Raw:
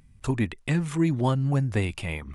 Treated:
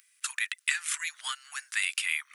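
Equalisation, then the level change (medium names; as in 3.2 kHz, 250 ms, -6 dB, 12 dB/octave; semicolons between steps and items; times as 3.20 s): steep high-pass 1.4 kHz 36 dB/octave; treble shelf 6.5 kHz +10.5 dB; +5.5 dB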